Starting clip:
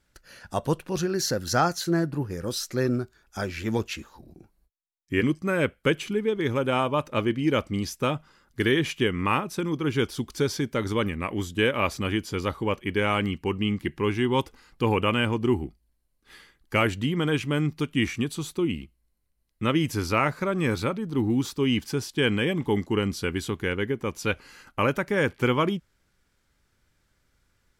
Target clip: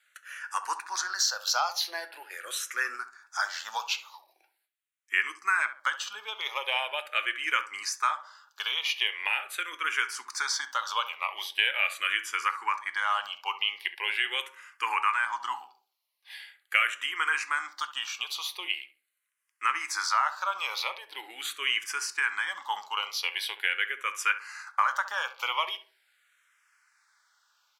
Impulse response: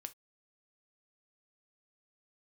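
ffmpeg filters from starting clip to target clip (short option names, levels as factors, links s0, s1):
-filter_complex "[0:a]highpass=f=1000:w=0.5412,highpass=f=1000:w=1.3066,acompressor=threshold=0.0282:ratio=2.5,asplit=2[s0][s1];[s1]adelay=68,lowpass=f=1300:p=1,volume=0.282,asplit=2[s2][s3];[s3]adelay=68,lowpass=f=1300:p=1,volume=0.41,asplit=2[s4][s5];[s5]adelay=68,lowpass=f=1300:p=1,volume=0.41,asplit=2[s6][s7];[s7]adelay=68,lowpass=f=1300:p=1,volume=0.41[s8];[s0][s2][s4][s6][s8]amix=inputs=5:normalize=0,asplit=2[s9][s10];[1:a]atrim=start_sample=2205,highshelf=f=7600:g=-11.5[s11];[s10][s11]afir=irnorm=-1:irlink=0,volume=3.76[s12];[s9][s12]amix=inputs=2:normalize=0,asplit=2[s13][s14];[s14]afreqshift=-0.42[s15];[s13][s15]amix=inputs=2:normalize=1"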